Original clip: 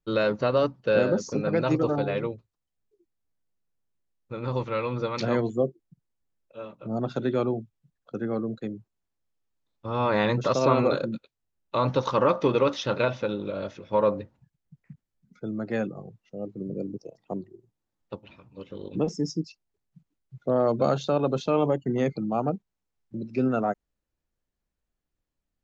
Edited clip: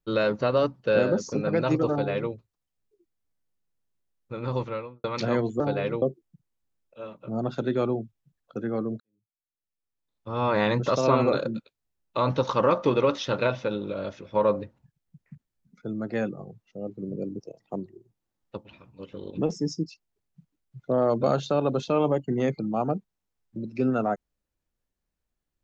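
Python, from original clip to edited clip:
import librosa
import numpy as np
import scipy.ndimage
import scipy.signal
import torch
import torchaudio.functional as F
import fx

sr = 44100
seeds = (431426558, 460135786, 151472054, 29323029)

y = fx.studio_fade_out(x, sr, start_s=4.58, length_s=0.46)
y = fx.edit(y, sr, fx.duplicate(start_s=1.91, length_s=0.42, to_s=5.6),
    fx.fade_in_span(start_s=8.58, length_s=1.4, curve='qua'), tone=tone)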